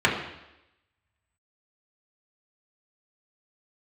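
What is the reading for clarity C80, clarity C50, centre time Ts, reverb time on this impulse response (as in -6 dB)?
8.0 dB, 6.0 dB, 34 ms, 0.90 s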